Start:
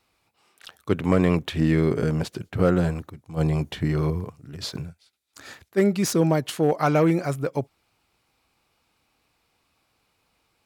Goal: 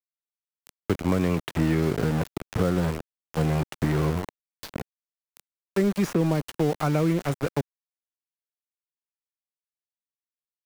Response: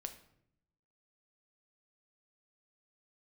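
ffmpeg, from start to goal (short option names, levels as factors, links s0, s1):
-filter_complex "[0:a]aeval=exprs='val(0)*gte(abs(val(0)),0.0501)':c=same,acrossover=split=280|2500[s0][s1][s2];[s0]acompressor=threshold=0.0562:ratio=4[s3];[s1]acompressor=threshold=0.0355:ratio=4[s4];[s2]acompressor=threshold=0.00631:ratio=4[s5];[s3][s4][s5]amix=inputs=3:normalize=0,volume=1.33"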